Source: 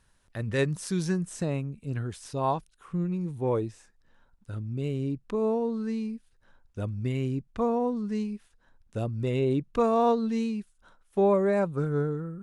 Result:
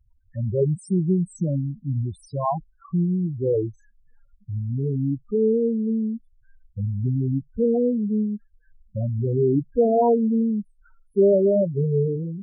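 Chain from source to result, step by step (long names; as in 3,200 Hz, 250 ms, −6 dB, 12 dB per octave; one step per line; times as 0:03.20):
spectral peaks only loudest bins 4
level +7.5 dB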